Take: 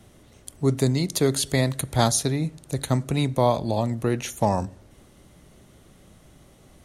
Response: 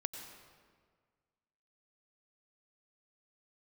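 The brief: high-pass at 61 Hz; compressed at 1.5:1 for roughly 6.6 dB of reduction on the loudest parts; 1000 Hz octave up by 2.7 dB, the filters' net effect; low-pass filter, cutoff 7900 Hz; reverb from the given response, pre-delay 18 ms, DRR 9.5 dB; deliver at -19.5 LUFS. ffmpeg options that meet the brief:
-filter_complex "[0:a]highpass=61,lowpass=7.9k,equalizer=f=1k:t=o:g=3.5,acompressor=threshold=-33dB:ratio=1.5,asplit=2[a][b];[1:a]atrim=start_sample=2205,adelay=18[c];[b][c]afir=irnorm=-1:irlink=0,volume=-9.5dB[d];[a][d]amix=inputs=2:normalize=0,volume=10dB"

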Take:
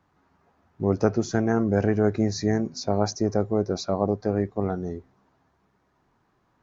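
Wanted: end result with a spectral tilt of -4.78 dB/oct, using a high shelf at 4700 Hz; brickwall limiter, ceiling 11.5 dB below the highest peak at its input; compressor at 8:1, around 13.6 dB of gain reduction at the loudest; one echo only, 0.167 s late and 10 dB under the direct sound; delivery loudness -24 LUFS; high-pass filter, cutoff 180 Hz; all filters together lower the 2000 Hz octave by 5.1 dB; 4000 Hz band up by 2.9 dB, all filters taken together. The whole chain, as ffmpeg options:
-af "highpass=180,equalizer=f=2k:t=o:g=-8,equalizer=f=4k:t=o:g=9,highshelf=f=4.7k:g=-6.5,acompressor=threshold=-31dB:ratio=8,alimiter=level_in=6.5dB:limit=-24dB:level=0:latency=1,volume=-6.5dB,aecho=1:1:167:0.316,volume=16.5dB"

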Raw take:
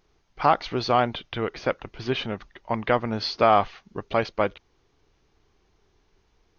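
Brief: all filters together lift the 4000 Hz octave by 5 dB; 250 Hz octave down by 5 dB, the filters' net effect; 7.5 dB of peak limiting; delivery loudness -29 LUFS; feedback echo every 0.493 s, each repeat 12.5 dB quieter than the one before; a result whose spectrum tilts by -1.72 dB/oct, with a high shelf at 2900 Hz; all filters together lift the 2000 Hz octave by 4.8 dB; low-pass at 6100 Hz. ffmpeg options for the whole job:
-af "lowpass=6.1k,equalizer=f=250:t=o:g=-6.5,equalizer=f=2k:t=o:g=6,highshelf=f=2.9k:g=-4.5,equalizer=f=4k:t=o:g=8.5,alimiter=limit=-11dB:level=0:latency=1,aecho=1:1:493|986|1479:0.237|0.0569|0.0137,volume=-2dB"

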